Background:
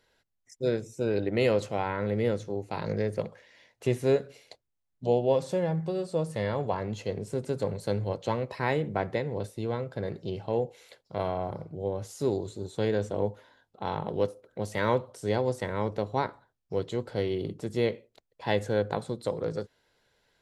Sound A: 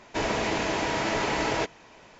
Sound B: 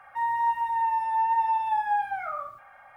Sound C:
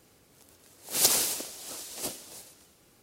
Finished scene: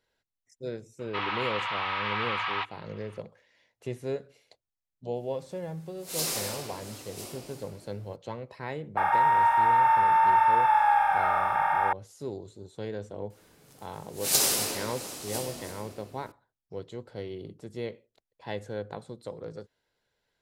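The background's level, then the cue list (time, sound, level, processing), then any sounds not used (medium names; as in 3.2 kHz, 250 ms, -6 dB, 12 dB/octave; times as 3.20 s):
background -8.5 dB
0.99 s: add A -1.5 dB + mistuned SSB +310 Hz 590–3600 Hz
5.14 s: add C -14 dB + simulated room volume 67 m³, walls hard, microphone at 1.1 m
8.97 s: add B -0.5 dB + spectral levelling over time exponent 0.2
13.30 s: add C -2.5 dB + simulated room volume 70 m³, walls hard, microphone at 0.49 m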